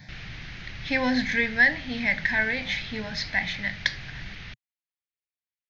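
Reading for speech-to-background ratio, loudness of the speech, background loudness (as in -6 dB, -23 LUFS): 15.5 dB, -25.0 LUFS, -40.5 LUFS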